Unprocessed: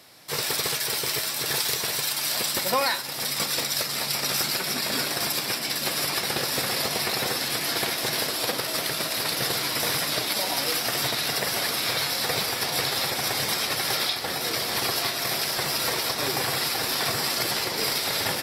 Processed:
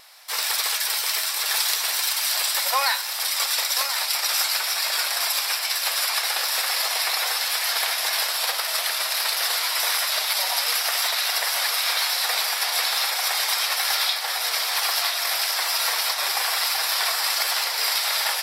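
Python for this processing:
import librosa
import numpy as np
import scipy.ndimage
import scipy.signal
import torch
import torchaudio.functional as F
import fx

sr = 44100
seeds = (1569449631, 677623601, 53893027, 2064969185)

p1 = scipy.signal.sosfilt(scipy.signal.butter(4, 720.0, 'highpass', fs=sr, output='sos'), x)
p2 = fx.quant_companded(p1, sr, bits=8)
p3 = fx.vibrato(p2, sr, rate_hz=1.1, depth_cents=6.3)
p4 = p3 + fx.echo_single(p3, sr, ms=1038, db=-9.5, dry=0)
y = F.gain(torch.from_numpy(p4), 3.0).numpy()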